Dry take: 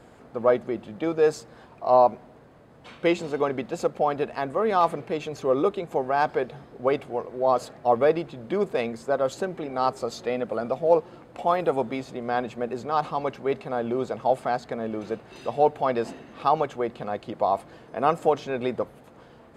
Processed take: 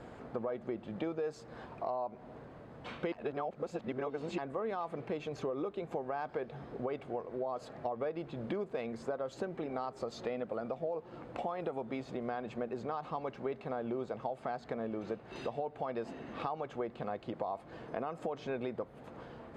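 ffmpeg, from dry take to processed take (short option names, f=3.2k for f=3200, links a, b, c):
-filter_complex "[0:a]asplit=3[a][b][c];[a]atrim=end=3.122[d];[b]atrim=start=3.118:end=4.382,asetpts=PTS-STARTPTS,areverse[e];[c]atrim=start=4.378[f];[d][e]acrossfade=d=0.004:c1=hsin:c2=hsin[g];[g][f]acrossfade=d=0.004:c1=hsin:c2=hsin,aemphasis=mode=reproduction:type=50fm,alimiter=limit=-16.5dB:level=0:latency=1:release=141,acompressor=threshold=-37dB:ratio=4,volume=1dB"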